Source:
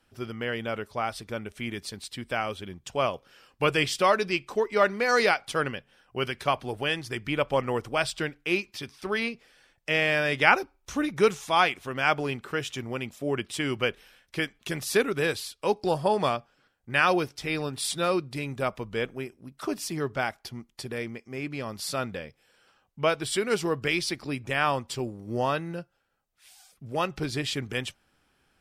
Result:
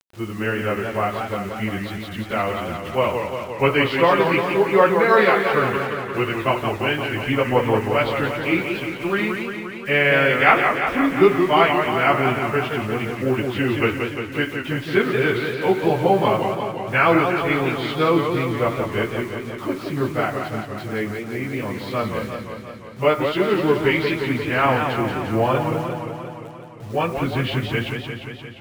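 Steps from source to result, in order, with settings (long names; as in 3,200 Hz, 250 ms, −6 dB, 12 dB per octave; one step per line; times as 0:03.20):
phase-vocoder pitch shift without resampling −1.5 semitones
low-pass filter 3,300 Hz 24 dB per octave
on a send at −12.5 dB: convolution reverb RT60 0.45 s, pre-delay 34 ms
on the sum: bit reduction 9 bits
feedback echo with a swinging delay time 175 ms, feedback 70%, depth 156 cents, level −6 dB
level +8.5 dB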